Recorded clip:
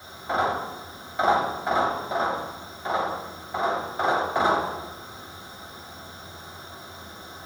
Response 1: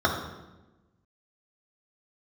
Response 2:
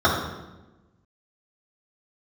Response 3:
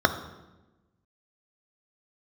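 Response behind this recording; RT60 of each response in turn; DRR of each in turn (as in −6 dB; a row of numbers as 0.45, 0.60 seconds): 2; 1.1, 1.1, 1.1 seconds; −1.5, −6.5, 7.0 decibels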